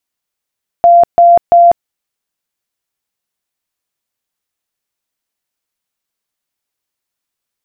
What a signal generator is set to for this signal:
tone bursts 690 Hz, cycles 135, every 0.34 s, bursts 3, −2 dBFS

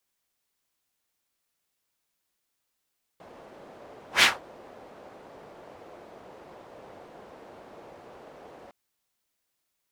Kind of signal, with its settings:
pass-by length 5.51 s, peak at 0:01.02, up 0.12 s, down 0.20 s, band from 570 Hz, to 2,700 Hz, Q 1.4, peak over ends 31.5 dB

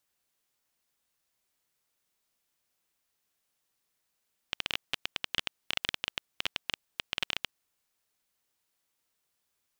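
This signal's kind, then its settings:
Geiger counter clicks 14 per second −11.5 dBFS 3.03 s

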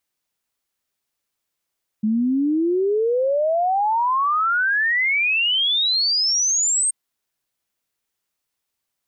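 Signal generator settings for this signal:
exponential sine sweep 210 Hz → 8,600 Hz 4.88 s −16.5 dBFS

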